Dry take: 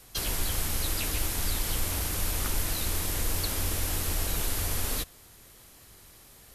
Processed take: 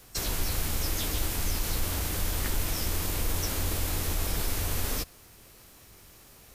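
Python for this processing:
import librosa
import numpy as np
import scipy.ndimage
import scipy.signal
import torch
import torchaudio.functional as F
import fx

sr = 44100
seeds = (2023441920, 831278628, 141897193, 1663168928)

y = fx.formant_shift(x, sr, semitones=5)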